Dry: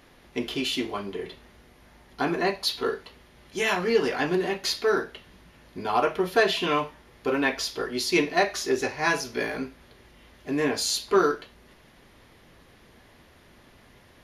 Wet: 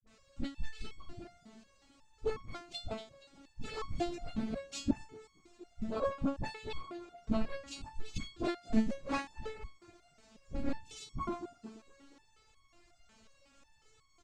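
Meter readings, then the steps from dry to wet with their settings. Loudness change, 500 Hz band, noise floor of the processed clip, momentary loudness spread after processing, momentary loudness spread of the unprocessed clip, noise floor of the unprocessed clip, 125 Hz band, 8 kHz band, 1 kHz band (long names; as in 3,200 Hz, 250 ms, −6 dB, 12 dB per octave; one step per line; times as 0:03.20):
−13.5 dB, −16.0 dB, −68 dBFS, 19 LU, 13 LU, −56 dBFS, −6.0 dB, −18.5 dB, −15.5 dB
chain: rippled gain that drifts along the octave scale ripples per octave 1.6, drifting +1.9 Hz, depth 11 dB
low-pass filter 3,800 Hz 12 dB per octave
parametric band 1,800 Hz −12.5 dB 1.5 octaves
transient designer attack +8 dB, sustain −11 dB
background noise pink −53 dBFS
cochlear-implant simulation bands 8
all-pass dispersion highs, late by 65 ms, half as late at 550 Hz
frequency shifter −240 Hz
on a send: echo with shifted repeats 236 ms, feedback 51%, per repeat +47 Hz, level −18 dB
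on the sum: step-sequenced resonator 5.5 Hz 220–1,100 Hz
level +5 dB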